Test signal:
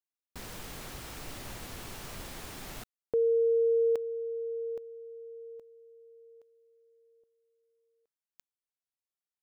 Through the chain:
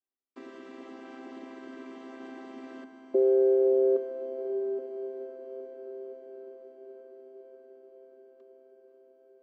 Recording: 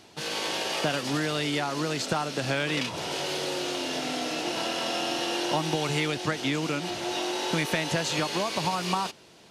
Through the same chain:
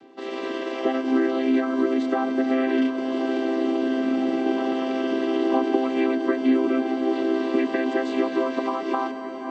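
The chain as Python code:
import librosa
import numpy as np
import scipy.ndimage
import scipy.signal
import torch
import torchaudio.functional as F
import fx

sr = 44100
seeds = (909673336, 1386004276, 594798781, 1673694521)

y = fx.chord_vocoder(x, sr, chord='major triad', root=60)
y = fx.bass_treble(y, sr, bass_db=7, treble_db=-12)
y = fx.echo_diffused(y, sr, ms=514, feedback_pct=77, wet_db=-10.5)
y = y * 10.0 ** (4.5 / 20.0)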